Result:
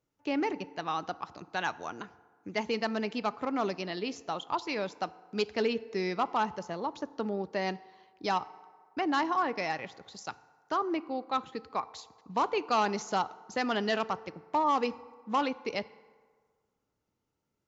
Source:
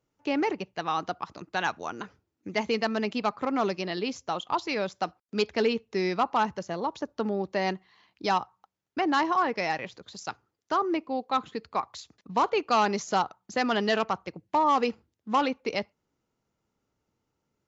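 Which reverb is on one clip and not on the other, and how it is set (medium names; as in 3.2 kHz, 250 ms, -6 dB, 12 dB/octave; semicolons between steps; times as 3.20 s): FDN reverb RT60 1.7 s, low-frequency decay 0.75×, high-frequency decay 0.5×, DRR 17 dB; trim -4 dB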